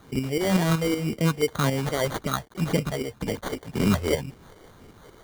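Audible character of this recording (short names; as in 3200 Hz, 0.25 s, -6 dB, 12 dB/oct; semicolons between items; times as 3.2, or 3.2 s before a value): tremolo saw up 5.3 Hz, depth 55%; a quantiser's noise floor 10-bit, dither none; phasing stages 4, 1.9 Hz, lowest notch 170–1100 Hz; aliases and images of a low sample rate 2600 Hz, jitter 0%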